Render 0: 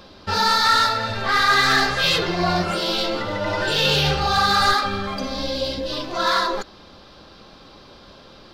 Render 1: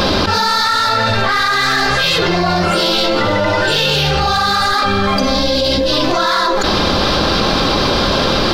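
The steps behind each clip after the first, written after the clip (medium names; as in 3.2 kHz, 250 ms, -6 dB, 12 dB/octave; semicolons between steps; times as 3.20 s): level flattener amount 100%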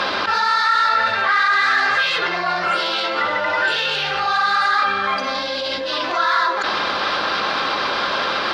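band-pass filter 1.6 kHz, Q 1.1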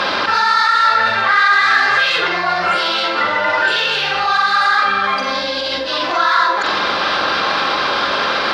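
flutter echo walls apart 7.6 m, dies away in 0.35 s; trim +3 dB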